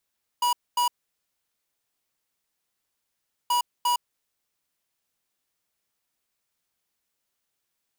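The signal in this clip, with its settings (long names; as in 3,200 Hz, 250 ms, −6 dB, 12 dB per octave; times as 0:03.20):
beeps in groups square 970 Hz, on 0.11 s, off 0.24 s, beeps 2, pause 2.62 s, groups 2, −22.5 dBFS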